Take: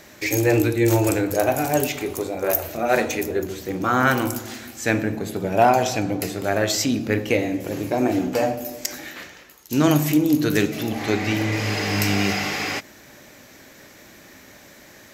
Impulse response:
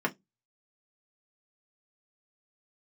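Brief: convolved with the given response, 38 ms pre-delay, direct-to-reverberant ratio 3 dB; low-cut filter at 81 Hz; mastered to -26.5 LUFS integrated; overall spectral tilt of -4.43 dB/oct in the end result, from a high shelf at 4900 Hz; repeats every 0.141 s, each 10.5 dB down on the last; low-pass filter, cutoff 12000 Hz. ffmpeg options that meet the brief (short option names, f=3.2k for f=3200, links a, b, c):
-filter_complex "[0:a]highpass=81,lowpass=12k,highshelf=f=4.9k:g=7.5,aecho=1:1:141|282|423:0.299|0.0896|0.0269,asplit=2[a][b];[1:a]atrim=start_sample=2205,adelay=38[c];[b][c]afir=irnorm=-1:irlink=0,volume=-12.5dB[d];[a][d]amix=inputs=2:normalize=0,volume=-7.5dB"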